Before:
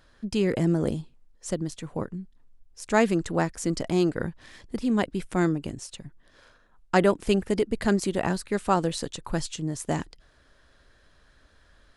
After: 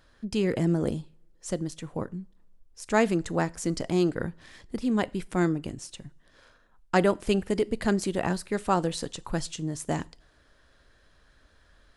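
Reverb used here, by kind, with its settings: two-slope reverb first 0.4 s, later 2 s, from -26 dB, DRR 18.5 dB; gain -1.5 dB

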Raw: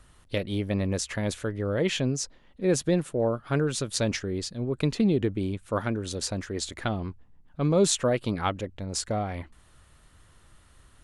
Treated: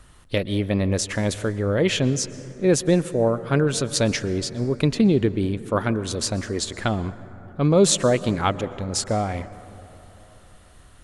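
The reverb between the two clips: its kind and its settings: plate-style reverb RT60 3.6 s, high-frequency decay 0.3×, pre-delay 0.105 s, DRR 15 dB; gain +5.5 dB

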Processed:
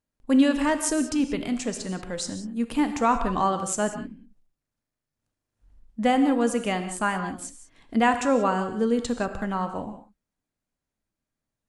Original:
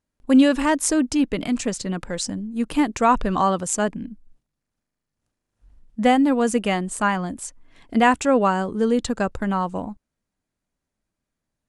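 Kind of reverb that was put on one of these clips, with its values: non-linear reverb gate 0.21 s flat, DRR 7.5 dB; gain -4.5 dB

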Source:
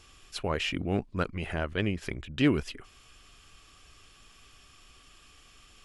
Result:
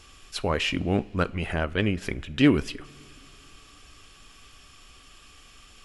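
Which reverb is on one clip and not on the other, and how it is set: two-slope reverb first 0.3 s, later 3.3 s, from -18 dB, DRR 15 dB; gain +4.5 dB

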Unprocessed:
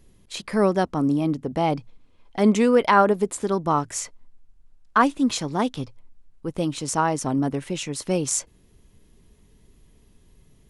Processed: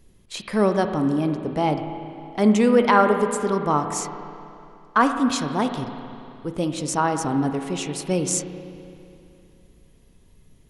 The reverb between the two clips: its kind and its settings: spring tank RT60 2.7 s, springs 33/51 ms, chirp 40 ms, DRR 6.5 dB

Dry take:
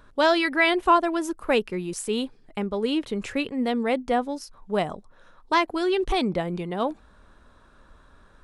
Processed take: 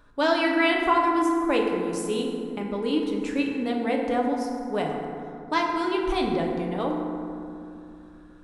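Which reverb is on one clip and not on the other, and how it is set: FDN reverb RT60 2.6 s, low-frequency decay 1.5×, high-frequency decay 0.4×, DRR -0.5 dB; gain -4.5 dB

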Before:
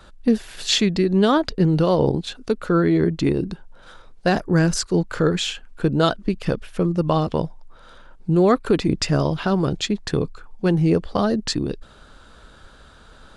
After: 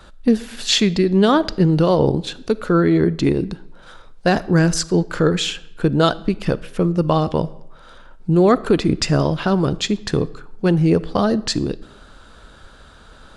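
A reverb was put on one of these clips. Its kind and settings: digital reverb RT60 0.84 s, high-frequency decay 0.8×, pre-delay 0 ms, DRR 18 dB; gain +2.5 dB

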